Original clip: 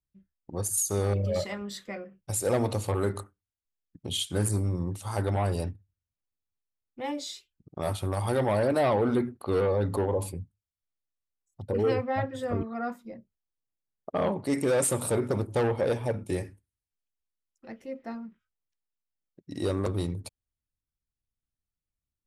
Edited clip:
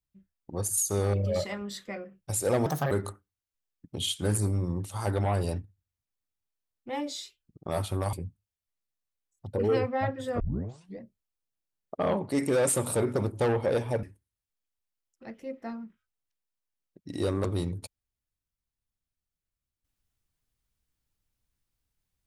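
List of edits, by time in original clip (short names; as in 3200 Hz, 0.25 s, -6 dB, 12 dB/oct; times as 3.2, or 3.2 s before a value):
2.66–3.02 speed 144%
8.24–10.28 cut
12.55 tape start 0.60 s
16.18–16.45 cut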